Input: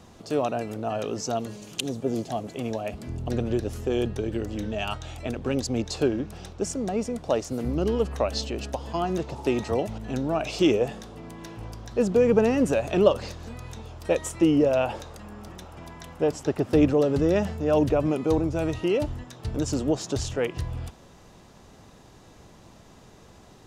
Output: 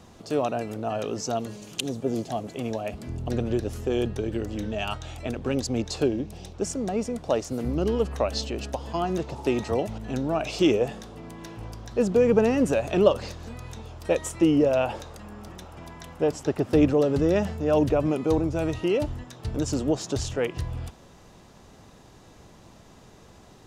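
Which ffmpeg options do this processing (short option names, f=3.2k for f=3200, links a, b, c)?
-filter_complex "[0:a]asettb=1/sr,asplit=3[a][b][c];[a]atrim=end=6.044[d];[b]atrim=start=6.04:end=6.54,asetpts=PTS-STARTPTS,afade=t=in:d=0.004:c=qsin,afade=t=out:st=0.496:d=0.004:c=qsin,equalizer=f=1.4k:w=1.8:g=-10.5[e];[c]atrim=start=6.536[f];[d][e]acrossfade=d=0.004:c1=hsin:c2=qsin[g];[g][f]acrossfade=d=0.004:c1=qsin:c2=hsin"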